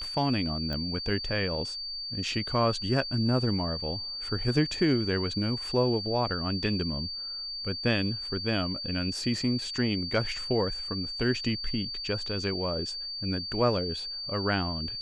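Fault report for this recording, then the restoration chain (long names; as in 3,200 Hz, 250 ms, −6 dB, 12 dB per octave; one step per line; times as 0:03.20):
whistle 4,600 Hz −34 dBFS
0:00.73: click −22 dBFS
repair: click removal
notch filter 4,600 Hz, Q 30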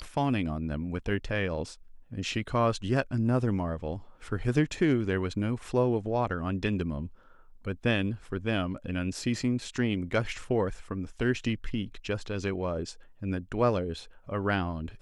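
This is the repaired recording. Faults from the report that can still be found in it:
none of them is left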